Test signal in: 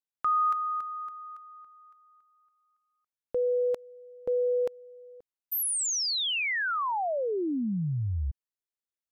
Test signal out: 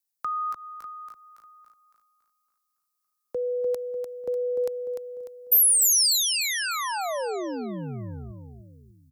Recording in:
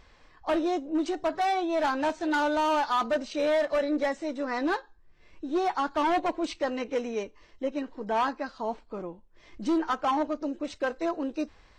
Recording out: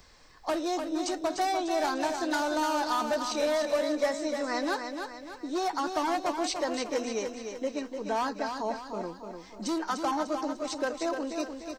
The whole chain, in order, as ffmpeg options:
-filter_complex "[0:a]acrossover=split=110|450[s0][s1][s2];[s0]acompressor=threshold=0.00141:ratio=4[s3];[s1]acompressor=threshold=0.0178:ratio=4[s4];[s2]acompressor=threshold=0.0398:ratio=4[s5];[s3][s4][s5]amix=inputs=3:normalize=0,aecho=1:1:298|596|894|1192|1490:0.473|0.213|0.0958|0.0431|0.0194,aexciter=amount=2.2:drive=8.3:freq=4300"

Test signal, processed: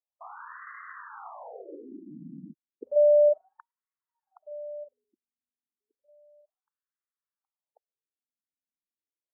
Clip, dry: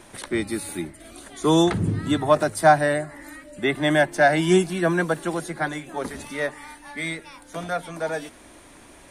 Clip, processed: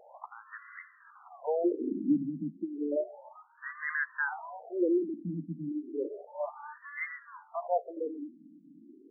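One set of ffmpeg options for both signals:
-af "alimiter=limit=0.188:level=0:latency=1:release=95,lowpass=2200,afftfilt=real='re*between(b*sr/1024,220*pow(1500/220,0.5+0.5*sin(2*PI*0.32*pts/sr))/1.41,220*pow(1500/220,0.5+0.5*sin(2*PI*0.32*pts/sr))*1.41)':imag='im*between(b*sr/1024,220*pow(1500/220,0.5+0.5*sin(2*PI*0.32*pts/sr))/1.41,220*pow(1500/220,0.5+0.5*sin(2*PI*0.32*pts/sr))*1.41)':win_size=1024:overlap=0.75"

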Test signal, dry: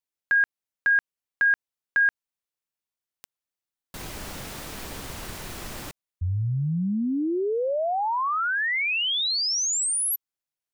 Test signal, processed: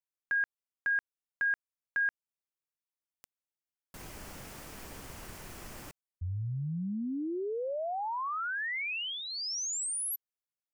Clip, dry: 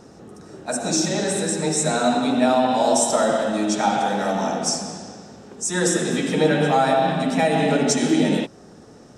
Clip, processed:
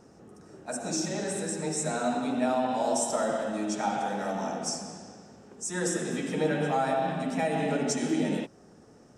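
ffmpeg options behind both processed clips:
-af "equalizer=f=3800:t=o:w=0.47:g=-6,volume=0.355"

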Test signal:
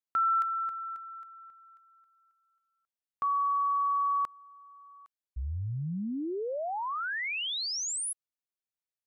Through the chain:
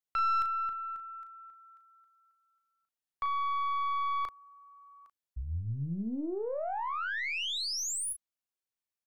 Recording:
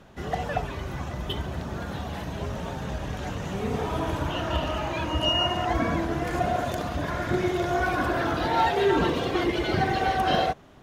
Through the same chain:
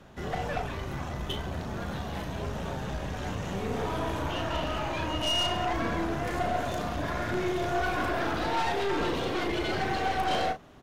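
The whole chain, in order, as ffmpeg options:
-filter_complex "[0:a]acrossover=split=400|1700[s0][s1][s2];[s0]acompressor=threshold=0.0398:ratio=6:attack=1:release=22:knee=2.83:detection=peak[s3];[s3][s1][s2]amix=inputs=3:normalize=0,aeval=exprs='(tanh(17.8*val(0)+0.4)-tanh(0.4))/17.8':c=same,asplit=2[s4][s5];[s5]adelay=36,volume=0.398[s6];[s4][s6]amix=inputs=2:normalize=0"

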